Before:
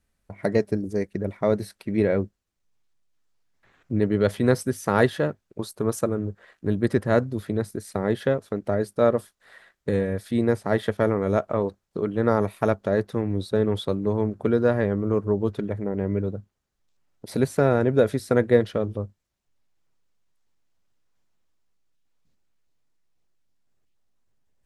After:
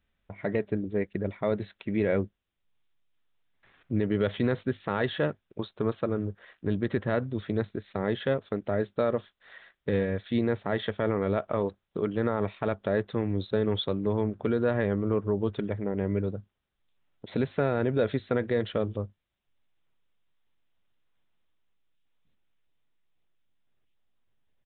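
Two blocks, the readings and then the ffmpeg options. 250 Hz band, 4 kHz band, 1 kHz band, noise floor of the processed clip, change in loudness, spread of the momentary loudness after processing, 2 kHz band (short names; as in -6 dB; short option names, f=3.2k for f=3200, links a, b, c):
-4.5 dB, 0.0 dB, -5.5 dB, -80 dBFS, -5.0 dB, 6 LU, -4.0 dB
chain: -af "alimiter=limit=-13dB:level=0:latency=1:release=56,crystalizer=i=3.5:c=0,aresample=8000,aresample=44100,volume=-3dB"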